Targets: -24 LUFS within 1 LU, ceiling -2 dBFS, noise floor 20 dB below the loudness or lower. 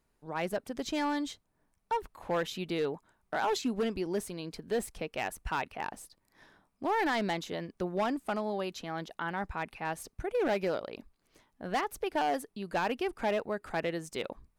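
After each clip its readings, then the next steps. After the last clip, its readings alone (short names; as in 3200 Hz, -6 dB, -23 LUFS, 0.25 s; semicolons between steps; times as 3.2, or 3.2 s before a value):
clipped 1.7%; flat tops at -24.5 dBFS; loudness -34.0 LUFS; peak -24.5 dBFS; loudness target -24.0 LUFS
-> clip repair -24.5 dBFS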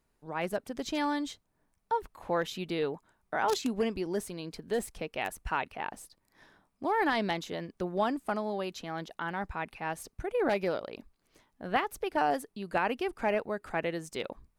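clipped 0.0%; loudness -33.0 LUFS; peak -15.5 dBFS; loudness target -24.0 LUFS
-> gain +9 dB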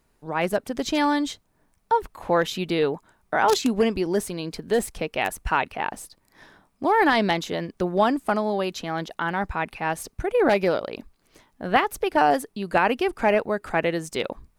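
loudness -24.0 LUFS; peak -6.5 dBFS; noise floor -67 dBFS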